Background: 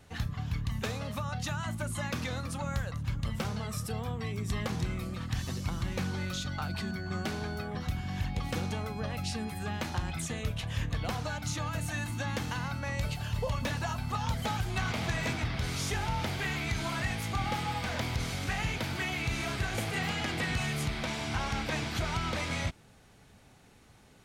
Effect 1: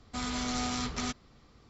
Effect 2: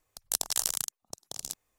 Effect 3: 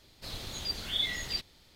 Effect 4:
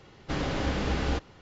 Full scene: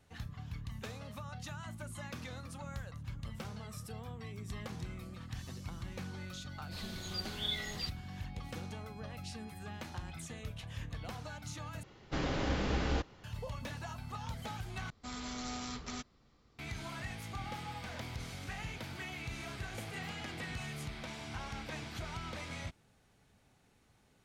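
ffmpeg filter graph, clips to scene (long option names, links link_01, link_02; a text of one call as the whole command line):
ffmpeg -i bed.wav -i cue0.wav -i cue1.wav -i cue2.wav -i cue3.wav -filter_complex "[0:a]volume=-10dB,asplit=3[link_01][link_02][link_03];[link_01]atrim=end=11.834[link_04];[4:a]atrim=end=1.41,asetpts=PTS-STARTPTS,volume=-4.5dB[link_05];[link_02]atrim=start=13.236:end=14.904[link_06];[1:a]atrim=end=1.69,asetpts=PTS-STARTPTS,volume=-8.5dB[link_07];[link_03]atrim=start=16.586[link_08];[3:a]atrim=end=1.75,asetpts=PTS-STARTPTS,volume=-6dB,afade=type=in:duration=0.004:curve=hsin,afade=type=out:start_time=1.746:duration=0.004:curve=hsin,adelay=6490[link_09];[link_04][link_05]acrossfade=duration=0.004:curve1=hsin:curve2=hsin[link_10];[link_10][link_06]acrossfade=duration=0.004:curve1=hsin:curve2=hsin[link_11];[link_11][link_07]acrossfade=duration=0.004:curve1=hsin:curve2=hsin[link_12];[link_12][link_08]acrossfade=duration=0.004:curve1=hsin:curve2=hsin[link_13];[link_13][link_09]amix=inputs=2:normalize=0" out.wav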